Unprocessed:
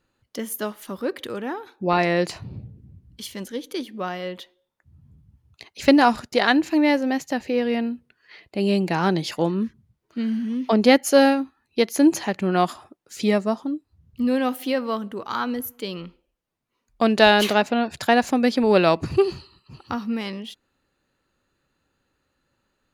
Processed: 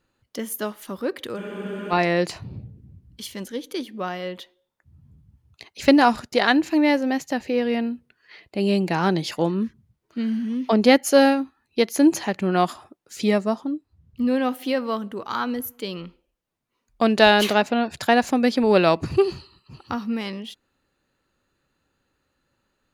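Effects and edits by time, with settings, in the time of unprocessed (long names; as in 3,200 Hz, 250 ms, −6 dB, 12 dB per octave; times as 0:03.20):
0:01.40: frozen spectrum 0.52 s
0:13.61–0:14.65: high-shelf EQ 5,400 Hz −5.5 dB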